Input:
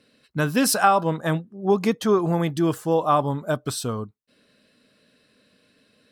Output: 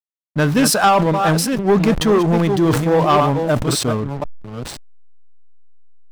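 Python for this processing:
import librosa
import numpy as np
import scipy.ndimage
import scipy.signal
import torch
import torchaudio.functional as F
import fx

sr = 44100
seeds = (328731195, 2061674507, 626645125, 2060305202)

y = fx.reverse_delay(x, sr, ms=530, wet_db=-8.0)
y = fx.high_shelf(y, sr, hz=11000.0, db=-5.5)
y = fx.leveller(y, sr, passes=2)
y = fx.backlash(y, sr, play_db=-25.0)
y = fx.sustainer(y, sr, db_per_s=53.0)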